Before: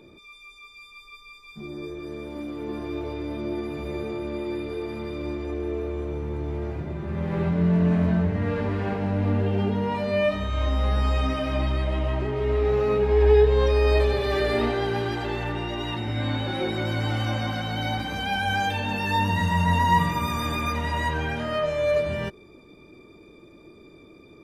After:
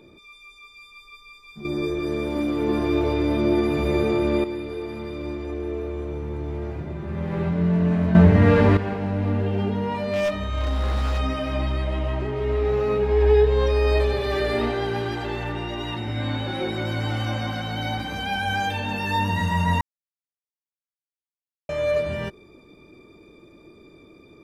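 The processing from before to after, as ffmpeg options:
ffmpeg -i in.wav -filter_complex "[0:a]asplit=3[link_01][link_02][link_03];[link_01]afade=type=out:start_time=9.98:duration=0.02[link_04];[link_02]aeval=exprs='0.126*(abs(mod(val(0)/0.126+3,4)-2)-1)':channel_layout=same,afade=type=in:start_time=9.98:duration=0.02,afade=type=out:start_time=11.18:duration=0.02[link_05];[link_03]afade=type=in:start_time=11.18:duration=0.02[link_06];[link_04][link_05][link_06]amix=inputs=3:normalize=0,asplit=7[link_07][link_08][link_09][link_10][link_11][link_12][link_13];[link_07]atrim=end=1.652[link_14];[link_08]atrim=start=1.648:end=4.442,asetpts=PTS-STARTPTS,volume=9.5dB[link_15];[link_09]atrim=start=4.438:end=8.152[link_16];[link_10]atrim=start=8.148:end=8.772,asetpts=PTS-STARTPTS,volume=10.5dB[link_17];[link_11]atrim=start=8.768:end=19.81,asetpts=PTS-STARTPTS,afade=type=out:start_time=11.038:duration=0.004:curve=hsin[link_18];[link_12]atrim=start=19.81:end=21.69,asetpts=PTS-STARTPTS,volume=0[link_19];[link_13]atrim=start=21.69,asetpts=PTS-STARTPTS,afade=type=in:duration=0.004:curve=hsin[link_20];[link_14][link_15]acrossfade=duration=0.004:curve1=hsin:curve2=hsin[link_21];[link_21][link_16]acrossfade=duration=0.004:curve1=hsin:curve2=hsin[link_22];[link_22][link_17]acrossfade=duration=0.004:curve1=hsin:curve2=hsin[link_23];[link_18][link_19][link_20]concat=n=3:v=0:a=1[link_24];[link_23][link_24]acrossfade=duration=0.004:curve1=hsin:curve2=hsin" out.wav

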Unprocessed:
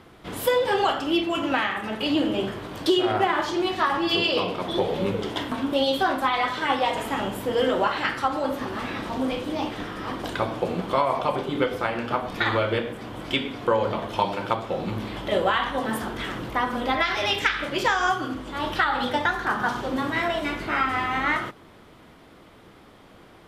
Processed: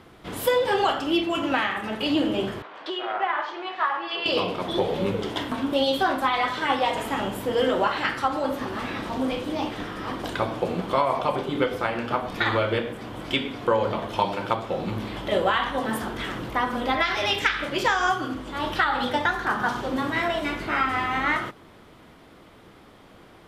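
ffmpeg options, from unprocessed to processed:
ffmpeg -i in.wav -filter_complex "[0:a]asettb=1/sr,asplit=3[link_01][link_02][link_03];[link_01]atrim=end=2.624[link_04];[link_02]atrim=start=2.62:end=4.26,asetpts=PTS-STARTPTS,afade=type=in:duration=0.004:curve=qsin,afade=type=out:start_time=1.636:duration=0.004:curve=qsin,highpass=740,lowpass=2300[link_05];[link_03]atrim=start=4.256[link_06];[link_04][link_05]acrossfade=duration=0.004:curve1=hsin:curve2=qsin[link_07];[link_07][link_06]acrossfade=duration=0.004:curve1=qsin:curve2=hsin" out.wav

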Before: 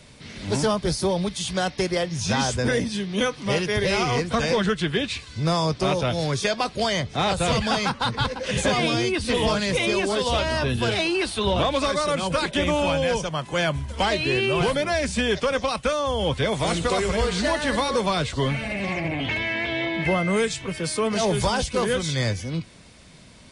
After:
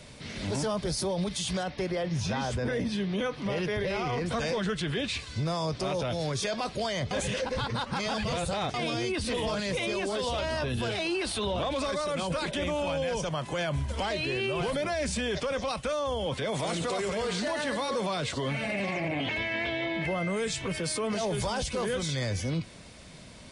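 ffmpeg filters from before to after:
ffmpeg -i in.wav -filter_complex "[0:a]asettb=1/sr,asplit=3[link_01][link_02][link_03];[link_01]atrim=end=1.634[link_04];[link_02]atrim=start=1.63:end=4.26,asetpts=PTS-STARTPTS,afade=type=in:duration=0.004:curve=qsin,afade=type=out:start_time=2.626:duration=0.004:curve=qsin,equalizer=frequency=8000:width_type=o:width=1.5:gain=-11[link_05];[link_03]atrim=start=4.256[link_06];[link_04][link_05]acrossfade=duration=0.004:curve1=hsin:curve2=qsin[link_07];[link_07][link_06]acrossfade=duration=0.004:curve1=qsin:curve2=hsin,asettb=1/sr,asplit=3[link_08][link_09][link_10];[link_08]atrim=end=16.264[link_11];[link_09]atrim=start=16.26:end=19.38,asetpts=PTS-STARTPTS,afade=type=in:duration=0.004:curve=qsin,afade=type=out:start_time=3.116:duration=0.004:curve=qsin,highpass=130[link_12];[link_10]atrim=start=19.376[link_13];[link_11][link_12]acrossfade=duration=0.004:curve1=hsin:curve2=qsin[link_14];[link_14][link_13]acrossfade=duration=0.004:curve1=qsin:curve2=hsin,asplit=3[link_15][link_16][link_17];[link_15]atrim=end=7.112[link_18];[link_16]atrim=start=7.108:end=8.742,asetpts=PTS-STARTPTS,areverse[link_19];[link_17]atrim=start=8.738[link_20];[link_18][link_19]acrossfade=duration=0.004:curve1=hsin:curve2=hsin[link_21];[link_21][link_20]acrossfade=duration=0.004:curve1=hsin:curve2=hsin,equalizer=frequency=600:width=2.3:gain=3,alimiter=limit=-23dB:level=0:latency=1:release=33" out.wav

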